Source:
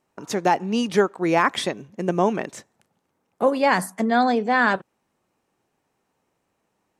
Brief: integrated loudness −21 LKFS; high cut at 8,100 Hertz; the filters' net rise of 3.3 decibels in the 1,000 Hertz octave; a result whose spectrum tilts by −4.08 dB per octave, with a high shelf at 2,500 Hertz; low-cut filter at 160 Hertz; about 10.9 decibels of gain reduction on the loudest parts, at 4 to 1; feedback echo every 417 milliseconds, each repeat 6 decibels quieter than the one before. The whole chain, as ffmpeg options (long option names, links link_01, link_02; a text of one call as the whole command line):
ffmpeg -i in.wav -af "highpass=160,lowpass=8100,equalizer=frequency=1000:width_type=o:gain=5.5,highshelf=frequency=2500:gain=-7.5,acompressor=threshold=-25dB:ratio=4,aecho=1:1:417|834|1251|1668|2085|2502:0.501|0.251|0.125|0.0626|0.0313|0.0157,volume=8dB" out.wav